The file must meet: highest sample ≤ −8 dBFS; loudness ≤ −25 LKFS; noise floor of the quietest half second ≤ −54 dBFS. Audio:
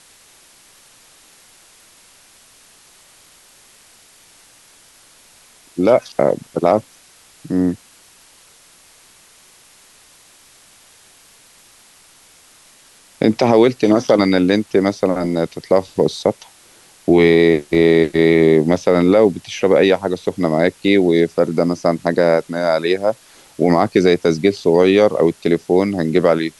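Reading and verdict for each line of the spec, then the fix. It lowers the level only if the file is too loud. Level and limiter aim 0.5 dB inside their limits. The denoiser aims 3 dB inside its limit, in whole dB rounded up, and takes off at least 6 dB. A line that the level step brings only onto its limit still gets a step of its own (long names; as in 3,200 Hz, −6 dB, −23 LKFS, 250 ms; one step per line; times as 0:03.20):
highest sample −2.0 dBFS: out of spec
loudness −15.5 LKFS: out of spec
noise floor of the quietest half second −49 dBFS: out of spec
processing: level −10 dB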